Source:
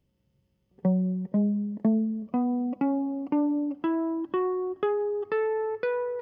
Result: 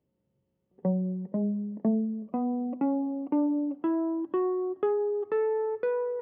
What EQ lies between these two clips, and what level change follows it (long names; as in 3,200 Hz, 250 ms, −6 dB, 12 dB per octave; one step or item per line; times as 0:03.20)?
resonant band-pass 440 Hz, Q 0.56
mains-hum notches 50/100/150/200/250 Hz
0.0 dB